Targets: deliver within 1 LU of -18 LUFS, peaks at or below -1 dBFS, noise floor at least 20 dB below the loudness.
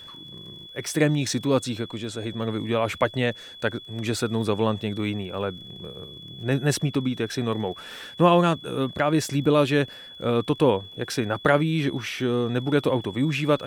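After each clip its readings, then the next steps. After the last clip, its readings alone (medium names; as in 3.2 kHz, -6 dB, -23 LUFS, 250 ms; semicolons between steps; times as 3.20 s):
tick rate 30 per s; steady tone 3.4 kHz; tone level -41 dBFS; loudness -24.5 LUFS; peak level -4.5 dBFS; loudness target -18.0 LUFS
-> de-click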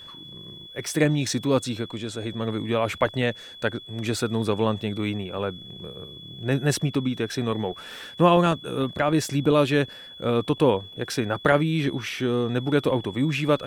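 tick rate 0.22 per s; steady tone 3.4 kHz; tone level -41 dBFS
-> band-stop 3.4 kHz, Q 30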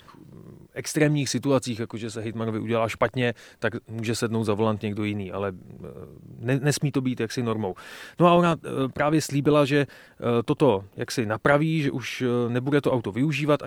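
steady tone not found; loudness -25.0 LUFS; peak level -4.5 dBFS; loudness target -18.0 LUFS
-> trim +7 dB; peak limiter -1 dBFS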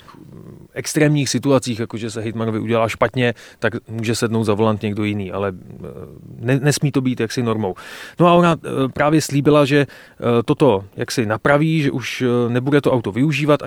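loudness -18.0 LUFS; peak level -1.0 dBFS; noise floor -47 dBFS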